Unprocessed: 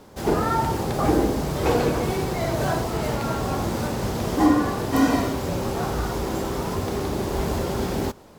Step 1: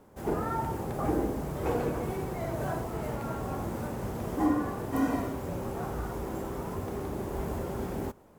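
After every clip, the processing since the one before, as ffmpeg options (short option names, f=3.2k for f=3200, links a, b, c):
-af "equalizer=f=4.4k:w=0.91:g=-11,volume=-8.5dB"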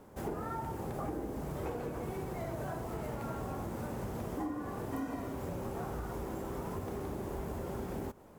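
-af "acompressor=threshold=-37dB:ratio=6,volume=1.5dB"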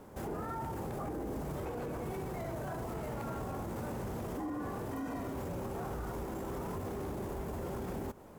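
-af "alimiter=level_in=10.5dB:limit=-24dB:level=0:latency=1:release=12,volume=-10.5dB,volume=3dB"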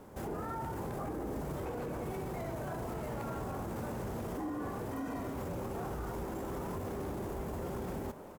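-filter_complex "[0:a]asplit=8[a][b][c][d][e][f][g][h];[b]adelay=214,afreqshift=110,volume=-15dB[i];[c]adelay=428,afreqshift=220,volume=-19dB[j];[d]adelay=642,afreqshift=330,volume=-23dB[k];[e]adelay=856,afreqshift=440,volume=-27dB[l];[f]adelay=1070,afreqshift=550,volume=-31.1dB[m];[g]adelay=1284,afreqshift=660,volume=-35.1dB[n];[h]adelay=1498,afreqshift=770,volume=-39.1dB[o];[a][i][j][k][l][m][n][o]amix=inputs=8:normalize=0"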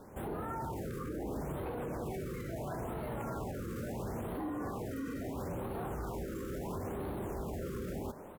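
-af "afftfilt=real='re*(1-between(b*sr/1024,740*pow(6500/740,0.5+0.5*sin(2*PI*0.74*pts/sr))/1.41,740*pow(6500/740,0.5+0.5*sin(2*PI*0.74*pts/sr))*1.41))':imag='im*(1-between(b*sr/1024,740*pow(6500/740,0.5+0.5*sin(2*PI*0.74*pts/sr))/1.41,740*pow(6500/740,0.5+0.5*sin(2*PI*0.74*pts/sr))*1.41))':win_size=1024:overlap=0.75"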